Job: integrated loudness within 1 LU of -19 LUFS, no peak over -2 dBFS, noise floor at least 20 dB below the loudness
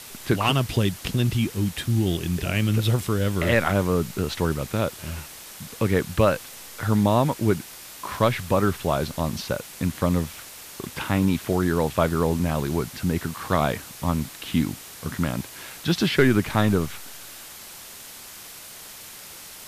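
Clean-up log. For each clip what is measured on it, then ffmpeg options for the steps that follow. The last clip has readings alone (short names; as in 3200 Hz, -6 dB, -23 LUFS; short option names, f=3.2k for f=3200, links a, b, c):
noise floor -42 dBFS; noise floor target -45 dBFS; loudness -24.5 LUFS; peak -6.5 dBFS; loudness target -19.0 LUFS
-> -af "afftdn=nr=6:nf=-42"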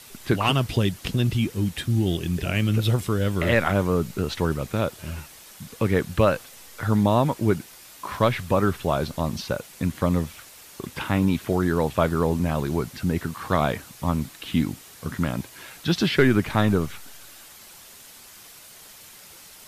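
noise floor -47 dBFS; loudness -24.5 LUFS; peak -6.5 dBFS; loudness target -19.0 LUFS
-> -af "volume=5.5dB,alimiter=limit=-2dB:level=0:latency=1"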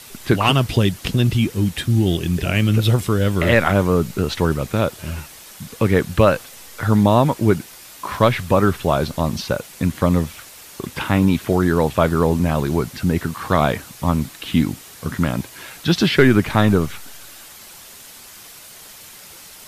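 loudness -19.0 LUFS; peak -2.0 dBFS; noise floor -41 dBFS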